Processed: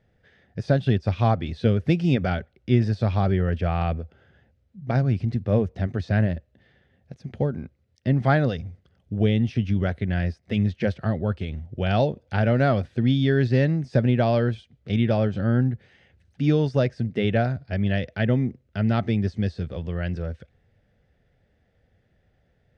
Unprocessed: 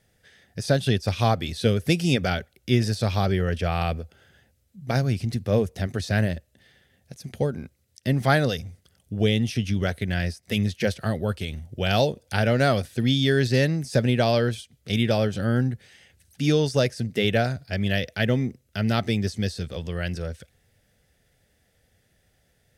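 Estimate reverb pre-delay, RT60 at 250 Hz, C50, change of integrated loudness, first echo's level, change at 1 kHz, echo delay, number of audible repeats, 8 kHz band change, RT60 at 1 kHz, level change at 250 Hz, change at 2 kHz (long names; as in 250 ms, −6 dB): no reverb audible, no reverb audible, no reverb audible, +0.5 dB, no echo audible, −0.5 dB, no echo audible, no echo audible, below −15 dB, no reverb audible, +1.5 dB, −3.5 dB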